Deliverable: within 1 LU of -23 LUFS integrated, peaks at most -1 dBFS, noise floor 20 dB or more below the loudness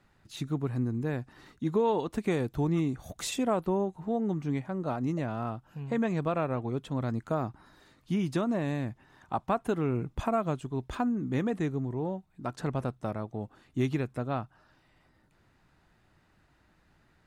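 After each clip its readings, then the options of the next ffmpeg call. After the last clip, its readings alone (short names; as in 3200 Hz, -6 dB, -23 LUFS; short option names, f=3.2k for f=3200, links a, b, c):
loudness -32.0 LUFS; peak -16.0 dBFS; loudness target -23.0 LUFS
-> -af "volume=9dB"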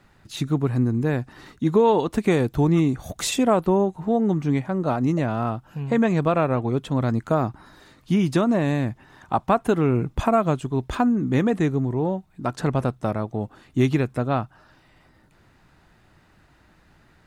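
loudness -23.0 LUFS; peak -7.0 dBFS; noise floor -58 dBFS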